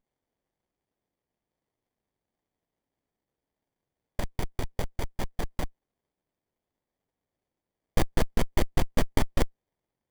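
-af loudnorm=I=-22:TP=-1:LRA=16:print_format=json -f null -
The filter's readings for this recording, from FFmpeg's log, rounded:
"input_i" : "-32.0",
"input_tp" : "-7.3",
"input_lra" : "8.0",
"input_thresh" : "-42.1",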